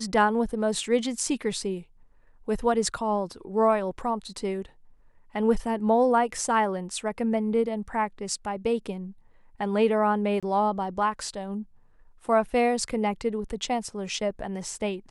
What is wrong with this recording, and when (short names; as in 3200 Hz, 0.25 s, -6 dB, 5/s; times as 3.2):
10.4–10.43 gap 26 ms